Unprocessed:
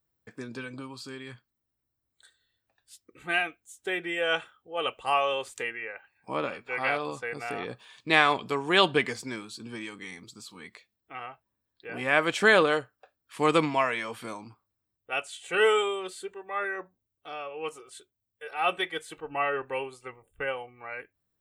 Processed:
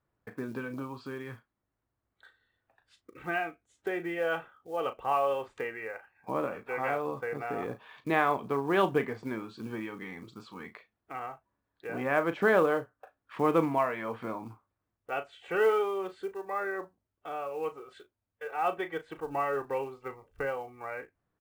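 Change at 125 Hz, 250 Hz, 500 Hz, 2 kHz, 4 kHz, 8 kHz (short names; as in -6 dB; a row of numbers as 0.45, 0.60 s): -0.5 dB, 0.0 dB, -1.0 dB, -7.0 dB, -16.0 dB, under -10 dB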